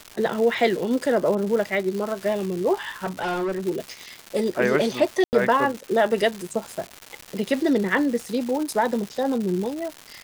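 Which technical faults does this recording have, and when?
surface crackle 350 per second −28 dBFS
0:03.04–0:03.67: clipping −23 dBFS
0:05.24–0:05.33: drop-out 89 ms

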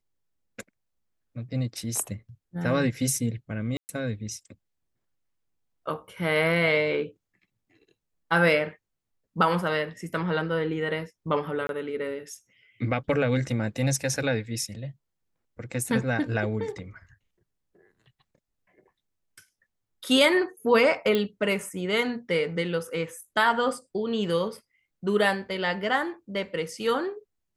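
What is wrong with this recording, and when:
0:03.77–0:03.89: drop-out 119 ms
0:11.67–0:11.69: drop-out 22 ms
0:21.15: click −13 dBFS

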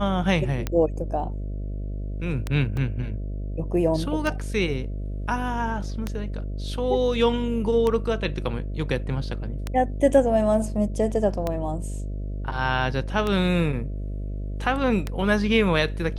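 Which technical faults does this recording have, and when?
mains buzz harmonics 13 −30 dBFS
scratch tick 33 1/3 rpm −12 dBFS
0:02.77: drop-out 2.5 ms

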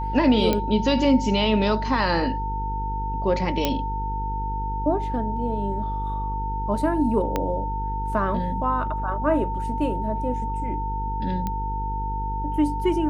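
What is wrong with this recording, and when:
mains buzz 50 Hz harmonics 10 −29 dBFS
whistle 900 Hz −28 dBFS
0:00.53: click −9 dBFS
0:03.65: click −6 dBFS
0:07.36: click −10 dBFS
0:11.47: click −15 dBFS

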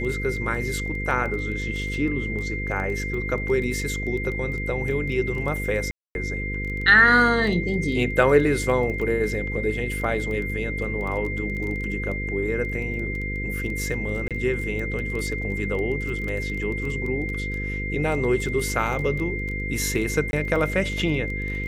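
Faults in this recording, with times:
mains buzz 50 Hz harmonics 10 −30 dBFS
surface crackle 13 per second −29 dBFS
whistle 2,100 Hz −30 dBFS
0:05.91–0:06.15: drop-out 241 ms
0:14.28–0:14.31: drop-out 27 ms
0:20.31–0:20.33: drop-out 21 ms

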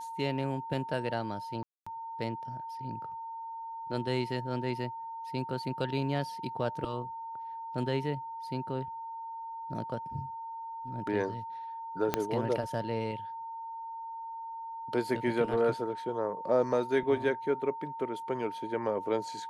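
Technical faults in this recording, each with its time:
whistle 910 Hz −38 dBFS
0:01.63–0:01.86: drop-out 235 ms
0:12.14: click −12 dBFS

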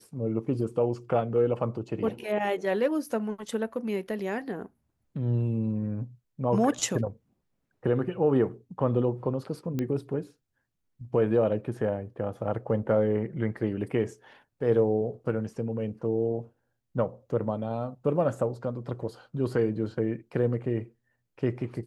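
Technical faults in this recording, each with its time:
0:09.79: click −18 dBFS

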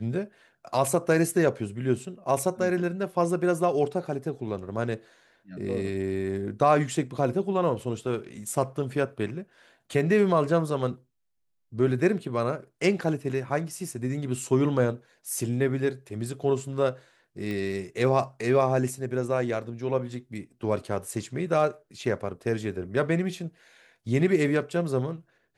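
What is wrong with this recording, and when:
0:17.51: click −22 dBFS

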